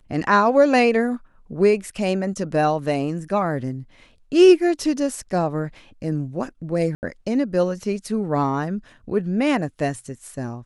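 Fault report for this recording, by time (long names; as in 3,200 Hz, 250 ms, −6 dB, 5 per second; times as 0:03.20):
0:06.95–0:07.03: drop-out 79 ms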